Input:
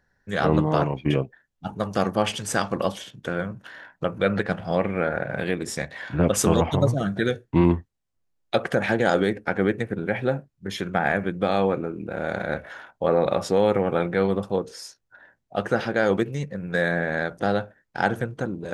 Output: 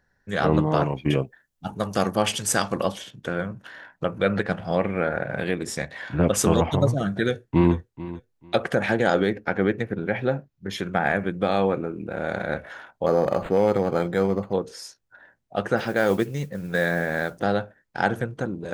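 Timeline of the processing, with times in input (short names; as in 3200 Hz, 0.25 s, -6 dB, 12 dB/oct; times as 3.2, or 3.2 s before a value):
0.83–2.81 high shelf 7500 Hz -> 4900 Hz +9.5 dB
7.13–7.75 echo throw 0.44 s, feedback 20%, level -16 dB
9.07–10.73 bell 8800 Hz -12 dB 0.38 oct
13.06–14.53 decimation joined by straight lines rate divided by 8×
15.77–17.42 modulation noise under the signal 26 dB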